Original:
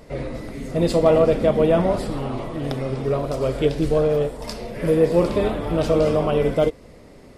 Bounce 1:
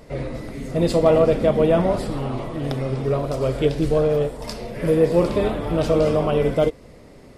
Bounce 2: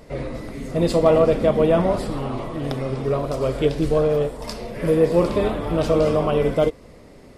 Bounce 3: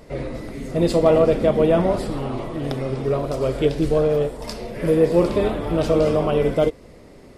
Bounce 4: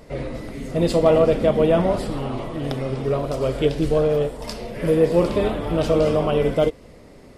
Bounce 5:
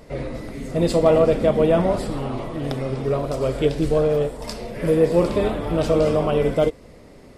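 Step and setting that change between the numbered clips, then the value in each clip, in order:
dynamic EQ, frequency: 130, 1100, 360, 3000, 7900 Hz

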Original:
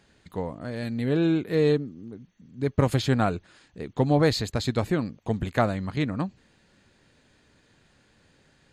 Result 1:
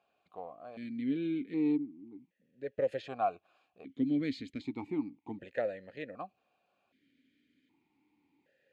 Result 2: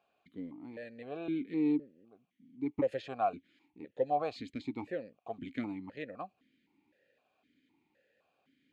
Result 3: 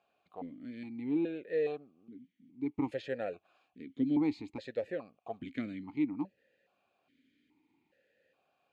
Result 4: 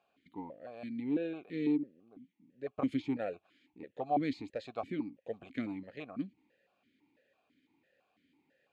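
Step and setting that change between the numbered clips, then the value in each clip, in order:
vowel sequencer, rate: 1.3, 3.9, 2.4, 6 Hz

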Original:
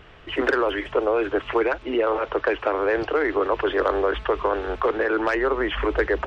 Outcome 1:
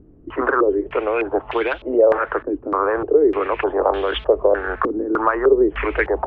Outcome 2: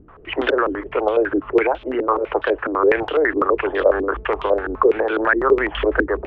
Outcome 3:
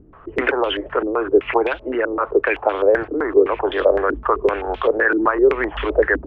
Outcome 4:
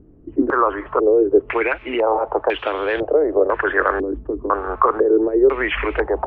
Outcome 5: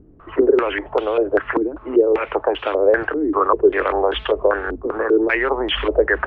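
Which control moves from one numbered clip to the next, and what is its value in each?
stepped low-pass, rate: 3.3, 12, 7.8, 2, 5.1 Hz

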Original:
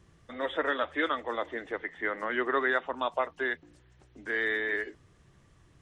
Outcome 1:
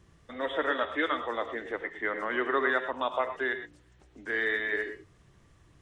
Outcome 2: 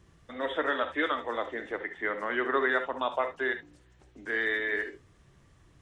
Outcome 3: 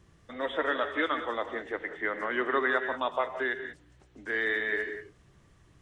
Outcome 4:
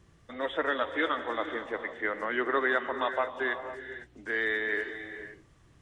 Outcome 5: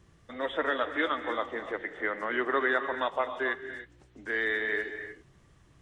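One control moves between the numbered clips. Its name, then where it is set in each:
non-linear reverb, gate: 140, 90, 210, 530, 330 ms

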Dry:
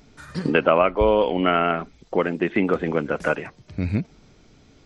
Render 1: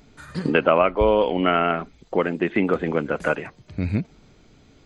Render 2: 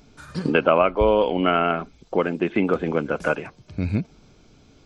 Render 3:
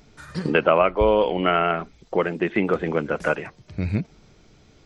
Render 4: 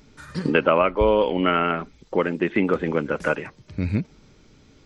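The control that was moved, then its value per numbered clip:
notch, frequency: 5500, 1900, 260, 700 Hz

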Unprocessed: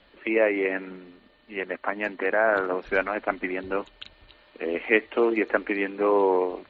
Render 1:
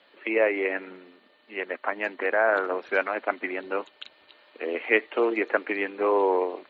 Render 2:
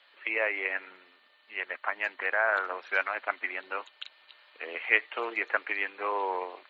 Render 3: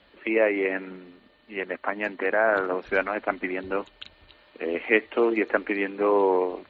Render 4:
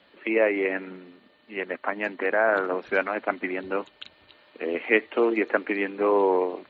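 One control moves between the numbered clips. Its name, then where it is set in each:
HPF, cutoff: 340, 1000, 41, 130 Hz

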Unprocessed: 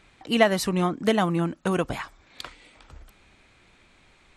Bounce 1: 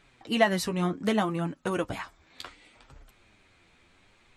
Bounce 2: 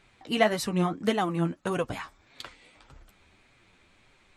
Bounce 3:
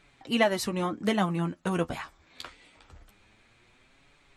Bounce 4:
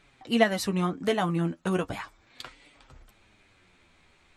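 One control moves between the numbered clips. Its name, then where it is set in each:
flange, rate: 0.67, 1.7, 0.24, 0.37 Hz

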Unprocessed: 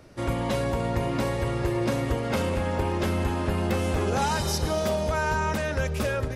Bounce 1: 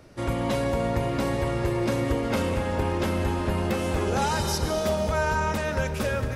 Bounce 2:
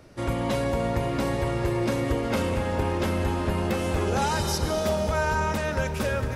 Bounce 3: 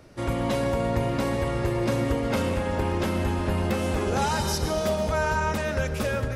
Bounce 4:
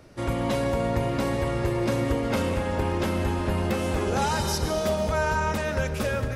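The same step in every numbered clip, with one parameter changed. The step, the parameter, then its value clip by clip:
plate-style reverb, RT60: 2.3, 4.9, 0.51, 1.1 s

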